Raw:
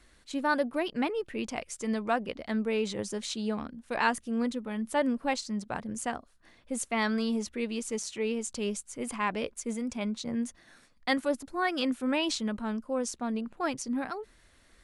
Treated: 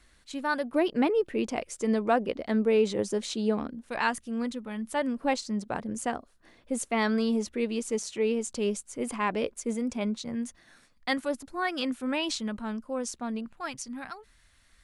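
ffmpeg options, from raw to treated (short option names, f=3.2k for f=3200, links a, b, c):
-af "asetnsamples=n=441:p=0,asendcmd='0.73 equalizer g 7.5;3.89 equalizer g -2.5;5.18 equalizer g 5;10.16 equalizer g -2;13.46 equalizer g -12',equalizer=f=400:t=o:w=1.8:g=-4"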